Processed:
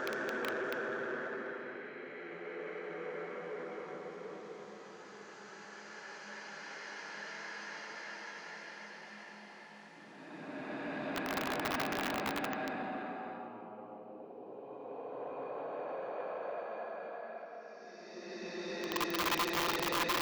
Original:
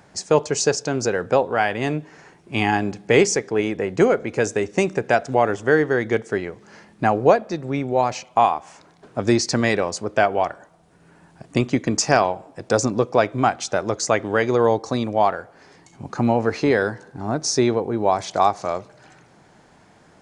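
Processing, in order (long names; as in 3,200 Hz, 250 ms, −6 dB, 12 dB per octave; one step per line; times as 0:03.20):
treble cut that deepens with the level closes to 2,900 Hz, closed at −15 dBFS
gate with flip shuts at −13 dBFS, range −25 dB
high-pass filter 180 Hz 24 dB per octave
mains-hum notches 60/120/180/240/300/360/420 Hz
extreme stretch with random phases 16×, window 0.25 s, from 0:06.30
wrap-around overflow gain 23 dB
parametric band 9,100 Hz −13.5 dB 0.7 octaves
soft clipping −28.5 dBFS, distortion −14 dB
low-shelf EQ 470 Hz −12 dB
level +3 dB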